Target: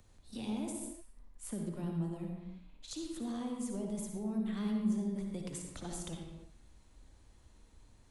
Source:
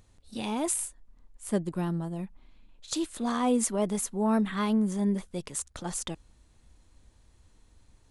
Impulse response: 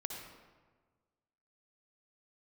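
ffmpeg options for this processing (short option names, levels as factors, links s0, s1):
-filter_complex "[0:a]bandreject=f=60:t=h:w=6,bandreject=f=120:t=h:w=6,bandreject=f=180:t=h:w=6,acrossover=split=370|730|2100[s0][s1][s2][s3];[s2]acompressor=threshold=0.00316:ratio=6[s4];[s0][s1][s4][s3]amix=inputs=4:normalize=0,alimiter=limit=0.0794:level=0:latency=1,acrossover=split=190[s5][s6];[s6]acompressor=threshold=0.00891:ratio=6[s7];[s5][s7]amix=inputs=2:normalize=0[s8];[1:a]atrim=start_sample=2205,afade=t=out:st=0.41:d=0.01,atrim=end_sample=18522[s9];[s8][s9]afir=irnorm=-1:irlink=0"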